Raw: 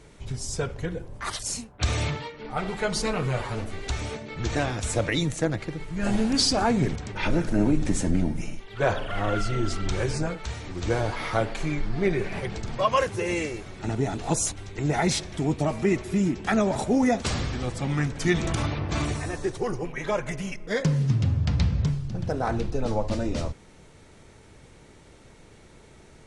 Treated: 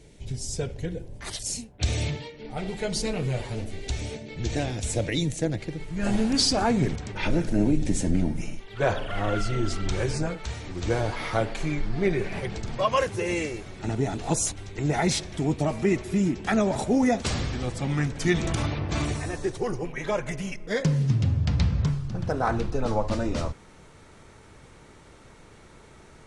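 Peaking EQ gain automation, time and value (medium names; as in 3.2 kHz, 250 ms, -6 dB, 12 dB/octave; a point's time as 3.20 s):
peaking EQ 1.2 kHz 0.94 oct
5.44 s -14 dB
6.06 s -2 dB
7.12 s -2 dB
7.86 s -13 dB
8.26 s -2 dB
21.44 s -2 dB
21.91 s +5.5 dB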